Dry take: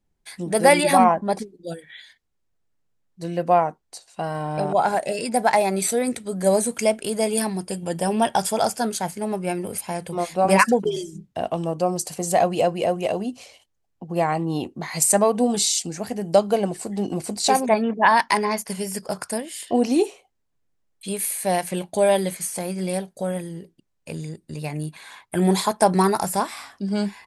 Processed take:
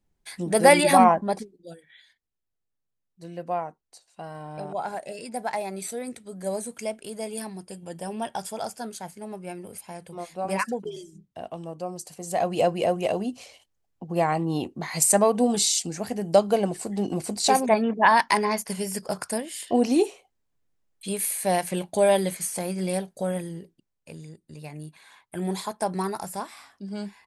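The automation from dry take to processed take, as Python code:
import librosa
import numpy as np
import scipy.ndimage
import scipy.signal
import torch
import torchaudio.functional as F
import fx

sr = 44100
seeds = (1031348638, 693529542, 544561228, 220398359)

y = fx.gain(x, sr, db=fx.line((1.16, -0.5), (1.73, -11.0), (12.19, -11.0), (12.63, -1.5), (23.5, -1.5), (24.17, -10.0)))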